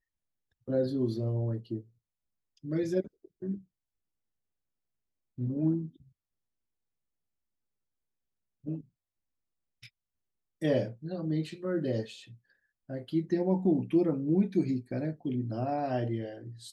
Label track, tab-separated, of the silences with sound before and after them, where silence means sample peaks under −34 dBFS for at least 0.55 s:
1.790000	2.650000	silence
3.550000	5.390000	silence
5.860000	8.670000	silence
8.780000	10.620000	silence
12.030000	12.900000	silence